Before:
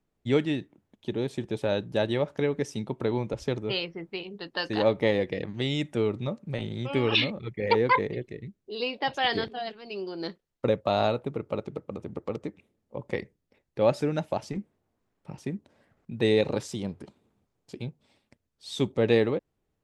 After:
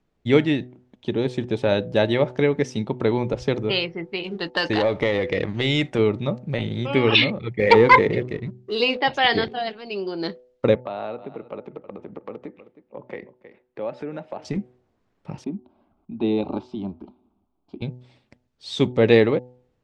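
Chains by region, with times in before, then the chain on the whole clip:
4.24–5.99 dynamic EQ 200 Hz, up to -5 dB, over -38 dBFS, Q 1.1 + compressor, threshold -26 dBFS + sample leveller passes 1
7.59–9 de-hum 101 Hz, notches 9 + sample leveller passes 1
10.75–14.45 three-band isolator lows -13 dB, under 190 Hz, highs -17 dB, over 3000 Hz + echo 0.315 s -22.5 dB + compressor 2:1, threshold -43 dBFS
15.44–17.82 air absorption 400 m + fixed phaser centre 490 Hz, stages 6
whole clip: LPF 5400 Hz 12 dB/oct; de-hum 124.8 Hz, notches 7; dynamic EQ 2100 Hz, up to +4 dB, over -49 dBFS, Q 5.5; gain +7 dB

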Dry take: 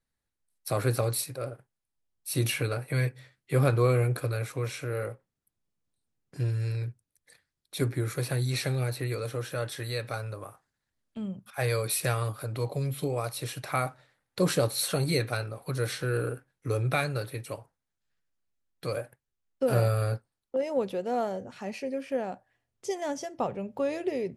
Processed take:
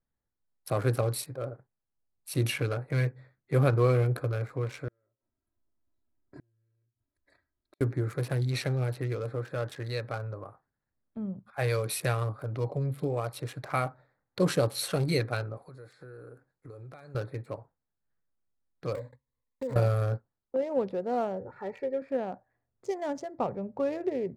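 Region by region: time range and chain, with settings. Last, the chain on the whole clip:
4.88–7.81 compressor 3:1, threshold -38 dBFS + comb 3.1 ms, depth 87% + flipped gate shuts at -35 dBFS, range -36 dB
15.57–17.15 tone controls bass -4 dB, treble +13 dB + compressor 5:1, threshold -44 dBFS
18.95–19.76 block floating point 3-bit + ripple EQ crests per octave 1, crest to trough 17 dB + compressor 3:1, threshold -35 dBFS
21.4–22.02 resonant high shelf 2700 Hz -7.5 dB, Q 1.5 + comb 2.2 ms, depth 70%
whole clip: Wiener smoothing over 15 samples; high shelf 6800 Hz -6.5 dB

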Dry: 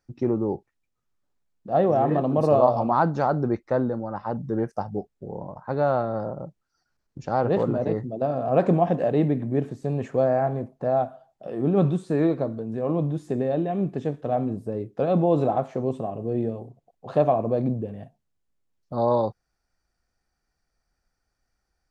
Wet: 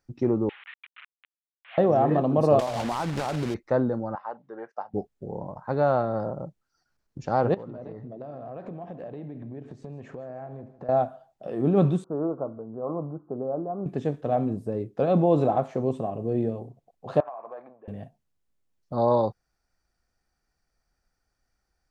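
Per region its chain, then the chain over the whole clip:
0.49–1.78 delta modulation 16 kbps, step -28 dBFS + Bessel high-pass 2200 Hz, order 4 + air absorption 97 m
2.59–3.55 block floating point 3-bit + compressor 16:1, threshold -23 dBFS + air absorption 53 m
4.15–4.94 BPF 800–3800 Hz + high shelf 2900 Hz -11.5 dB
7.54–10.89 compressor, threshold -36 dBFS + air absorption 87 m + feedback echo 0.155 s, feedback 40%, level -16 dB
12.04–13.86 steep low-pass 1400 Hz 96 dB/oct + low shelf 400 Hz -11.5 dB
17.2–17.88 Butterworth band-pass 1200 Hz, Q 1.2 + compressor 12:1, threshold -33 dBFS
whole clip: dry

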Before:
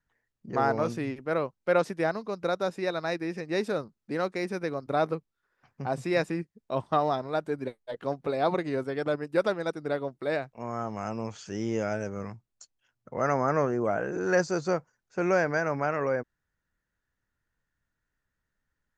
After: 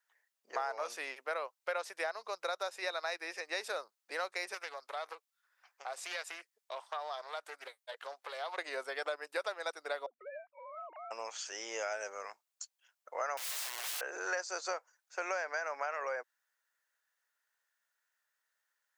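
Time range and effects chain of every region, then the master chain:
4.54–8.58 HPF 860 Hz 6 dB/oct + compressor 3:1, threshold -36 dBFS + Doppler distortion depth 0.23 ms
10.06–11.11 sine-wave speech + tilt -2 dB/oct + compressor 3:1, threshold -45 dBFS
13.37–14.01 HPF 380 Hz 6 dB/oct + fixed phaser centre 600 Hz, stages 8 + wrapped overs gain 35 dB
whole clip: HPF 560 Hz 24 dB/oct; tilt +2 dB/oct; compressor 6:1, threshold -33 dBFS

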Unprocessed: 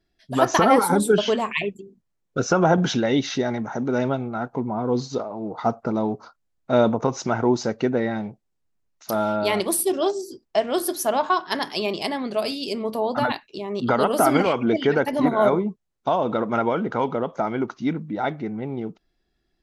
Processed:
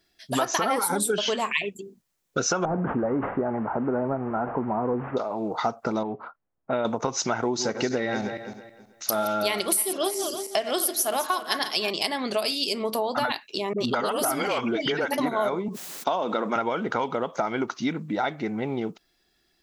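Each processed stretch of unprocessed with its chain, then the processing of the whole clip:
2.65–5.17 delta modulation 16 kbps, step -31 dBFS + LPF 1200 Hz 24 dB/oct + sustainer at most 130 dB/s
6.03–6.85 inverse Chebyshev low-pass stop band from 6000 Hz + compressor 1.5:1, threshold -32 dBFS + low-pass opened by the level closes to 850 Hz, open at -21 dBFS
7.41–11.9 regenerating reverse delay 0.161 s, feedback 46%, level -11 dB + notch 940 Hz, Q 11
13.73–15.18 compressor 2:1, threshold -21 dBFS + dispersion highs, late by 55 ms, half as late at 370 Hz
15.68–16.56 HPF 170 Hz 24 dB/oct + sustainer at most 55 dB/s
whole clip: tilt +2.5 dB/oct; compressor 5:1, threshold -29 dBFS; gain +6 dB

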